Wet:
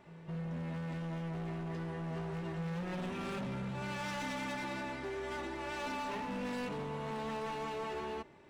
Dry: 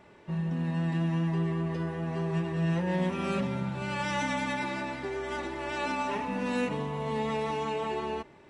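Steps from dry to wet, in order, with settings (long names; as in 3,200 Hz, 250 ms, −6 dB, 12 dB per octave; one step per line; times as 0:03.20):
gain into a clipping stage and back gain 32 dB
backwards echo 215 ms −14 dB
level −4.5 dB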